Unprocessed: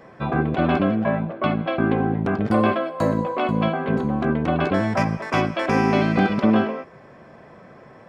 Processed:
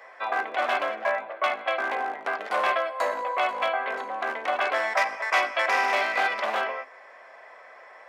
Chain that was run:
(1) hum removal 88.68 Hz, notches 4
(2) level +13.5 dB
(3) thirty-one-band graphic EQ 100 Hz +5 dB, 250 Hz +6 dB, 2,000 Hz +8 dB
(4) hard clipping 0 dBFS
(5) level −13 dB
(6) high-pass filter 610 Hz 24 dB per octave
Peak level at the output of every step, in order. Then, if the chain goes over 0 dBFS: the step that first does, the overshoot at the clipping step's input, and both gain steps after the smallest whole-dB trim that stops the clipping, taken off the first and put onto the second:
−6.5, +7.0, +9.0, 0.0, −13.0, −9.5 dBFS
step 2, 9.0 dB
step 2 +4.5 dB, step 5 −4 dB

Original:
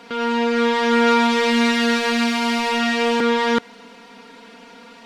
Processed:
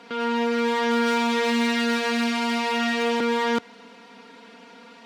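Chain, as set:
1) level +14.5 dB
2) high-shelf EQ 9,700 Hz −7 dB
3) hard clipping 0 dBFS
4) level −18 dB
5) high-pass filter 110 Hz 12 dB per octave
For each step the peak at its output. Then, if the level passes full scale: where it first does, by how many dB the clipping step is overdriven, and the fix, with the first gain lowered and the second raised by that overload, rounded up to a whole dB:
+8.5, +8.5, 0.0, −18.0, −13.5 dBFS
step 1, 8.5 dB
step 1 +5.5 dB, step 4 −9 dB

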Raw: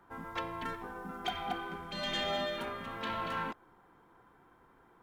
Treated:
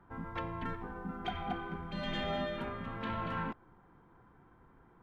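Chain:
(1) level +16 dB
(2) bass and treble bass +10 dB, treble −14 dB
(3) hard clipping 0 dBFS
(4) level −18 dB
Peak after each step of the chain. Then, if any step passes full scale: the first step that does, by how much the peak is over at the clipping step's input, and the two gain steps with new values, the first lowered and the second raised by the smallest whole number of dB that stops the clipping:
−6.0, −6.0, −6.0, −24.0 dBFS
no step passes full scale

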